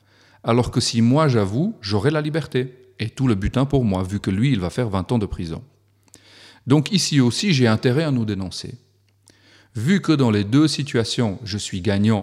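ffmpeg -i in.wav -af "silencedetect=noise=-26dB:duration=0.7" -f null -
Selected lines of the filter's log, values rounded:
silence_start: 8.73
silence_end: 9.77 | silence_duration: 1.03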